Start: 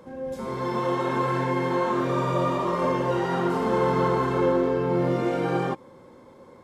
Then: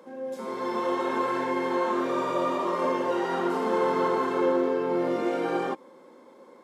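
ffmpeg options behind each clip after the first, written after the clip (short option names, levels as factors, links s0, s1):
-af "highpass=f=230:w=0.5412,highpass=f=230:w=1.3066,volume=0.841"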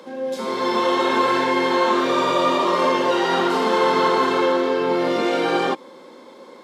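-filter_complex "[0:a]equalizer=f=3900:w=0.99:g=10,acrossover=split=670[s0][s1];[s0]alimiter=limit=0.0668:level=0:latency=1:release=46[s2];[s2][s1]amix=inputs=2:normalize=0,volume=2.51"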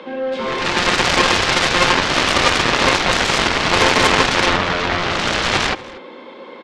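-filter_complex "[0:a]lowpass=f=2800:t=q:w=2.2,aeval=exprs='0.562*(cos(1*acos(clip(val(0)/0.562,-1,1)))-cos(1*PI/2))+0.2*(cos(7*acos(clip(val(0)/0.562,-1,1)))-cos(7*PI/2))':c=same,asplit=2[s0][s1];[s1]adelay=239.1,volume=0.112,highshelf=f=4000:g=-5.38[s2];[s0][s2]amix=inputs=2:normalize=0,volume=1.33"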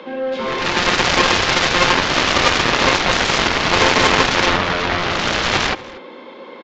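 -af "aresample=16000,aresample=44100"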